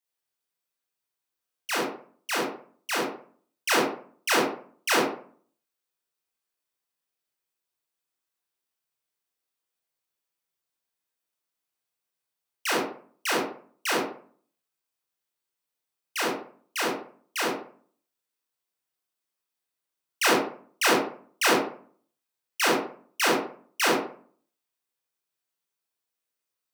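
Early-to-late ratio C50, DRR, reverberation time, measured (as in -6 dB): 3.0 dB, -5.5 dB, 0.50 s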